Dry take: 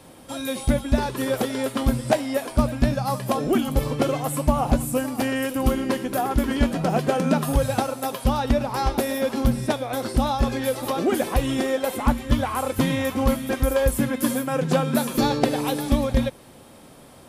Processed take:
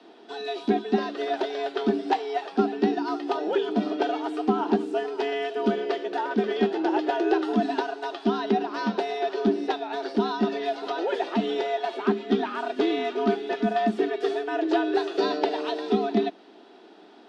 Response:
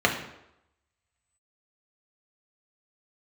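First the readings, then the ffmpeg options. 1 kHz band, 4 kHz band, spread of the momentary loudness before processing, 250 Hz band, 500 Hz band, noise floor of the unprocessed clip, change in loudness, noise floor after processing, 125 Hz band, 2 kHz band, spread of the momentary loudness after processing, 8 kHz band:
−1.0 dB, −3.0 dB, 4 LU, −3.0 dB, −0.5 dB, −47 dBFS, −3.0 dB, −50 dBFS, below −10 dB, −2.5 dB, 5 LU, below −20 dB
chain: -af "afreqshift=160,highpass=150,equalizer=frequency=160:width_type=q:width=4:gain=-9,equalizer=frequency=350:width_type=q:width=4:gain=4,equalizer=frequency=520:width_type=q:width=4:gain=-9,equalizer=frequency=1100:width_type=q:width=4:gain=-9,equalizer=frequency=2200:width_type=q:width=4:gain=-6,lowpass=frequency=4400:width=0.5412,lowpass=frequency=4400:width=1.3066,acontrast=30,volume=-6.5dB"

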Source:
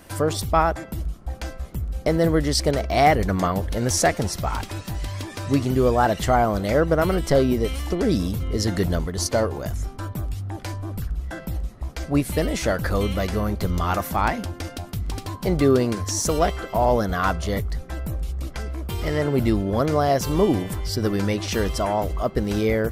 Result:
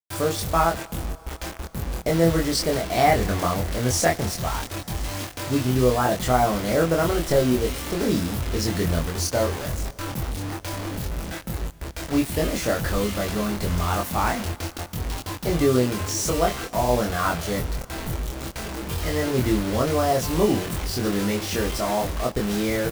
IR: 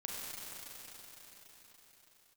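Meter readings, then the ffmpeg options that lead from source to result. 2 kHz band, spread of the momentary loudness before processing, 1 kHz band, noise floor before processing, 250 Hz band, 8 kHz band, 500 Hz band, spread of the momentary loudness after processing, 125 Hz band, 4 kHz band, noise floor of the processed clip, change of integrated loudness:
0.0 dB, 12 LU, −1.5 dB, −40 dBFS, −1.0 dB, +1.0 dB, −1.5 dB, 11 LU, −1.5 dB, +1.5 dB, −42 dBFS, −1.0 dB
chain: -filter_complex "[0:a]acrusher=bits=4:mix=0:aa=0.000001,asplit=2[link_01][link_02];[link_02]adelay=24,volume=-2dB[link_03];[link_01][link_03]amix=inputs=2:normalize=0,asplit=2[link_04][link_05];[1:a]atrim=start_sample=2205,adelay=30[link_06];[link_05][link_06]afir=irnorm=-1:irlink=0,volume=-20dB[link_07];[link_04][link_07]amix=inputs=2:normalize=0,volume=-3.5dB"

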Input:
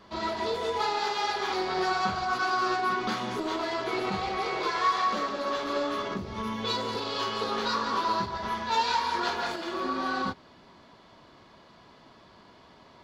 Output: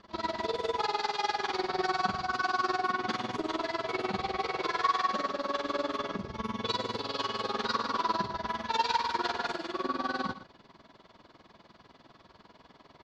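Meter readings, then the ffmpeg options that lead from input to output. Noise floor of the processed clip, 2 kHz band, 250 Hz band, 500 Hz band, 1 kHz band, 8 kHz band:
−60 dBFS, −3.0 dB, −3.0 dB, −3.0 dB, −2.5 dB, −4.5 dB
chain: -af "tremolo=f=20:d=0.919,lowpass=7200,aecho=1:1:116:0.211,volume=1dB"

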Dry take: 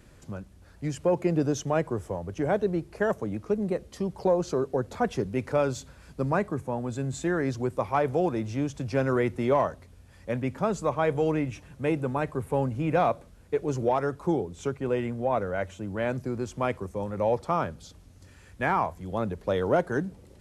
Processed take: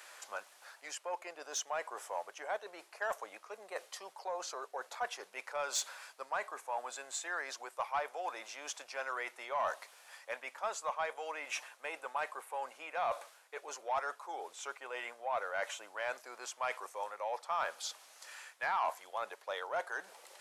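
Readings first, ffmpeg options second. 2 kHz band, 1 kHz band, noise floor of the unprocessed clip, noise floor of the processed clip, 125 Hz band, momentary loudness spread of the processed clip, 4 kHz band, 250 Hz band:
−3.5 dB, −6.5 dB, −53 dBFS, −63 dBFS, below −40 dB, 9 LU, +1.0 dB, −32.5 dB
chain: -af "areverse,acompressor=threshold=-35dB:ratio=8,areverse,highpass=frequency=740:width=0.5412,highpass=frequency=740:width=1.3066,asoftclip=type=tanh:threshold=-33.5dB,volume=9dB"

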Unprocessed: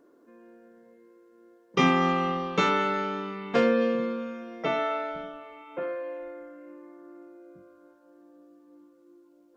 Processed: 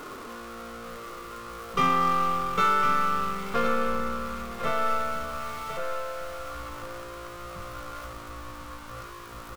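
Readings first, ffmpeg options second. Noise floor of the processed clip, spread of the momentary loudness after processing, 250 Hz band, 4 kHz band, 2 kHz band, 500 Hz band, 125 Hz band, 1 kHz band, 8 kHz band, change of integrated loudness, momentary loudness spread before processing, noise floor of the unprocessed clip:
−42 dBFS, 18 LU, −6.5 dB, −1.5 dB, 0.0 dB, −4.5 dB, −2.0 dB, +4.5 dB, can't be measured, −1.0 dB, 19 LU, −60 dBFS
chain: -filter_complex "[0:a]aeval=exprs='val(0)+0.5*0.0355*sgn(val(0))':channel_layout=same,superequalizer=6b=0.501:10b=2.82,aeval=exprs='0.398*(cos(1*acos(clip(val(0)/0.398,-1,1)))-cos(1*PI/2))+0.01*(cos(8*acos(clip(val(0)/0.398,-1,1)))-cos(8*PI/2))':channel_layout=same,asplit=2[link_01][link_02];[link_02]aecho=0:1:1053:0.355[link_03];[link_01][link_03]amix=inputs=2:normalize=0,asubboost=boost=6:cutoff=99,volume=-6dB"

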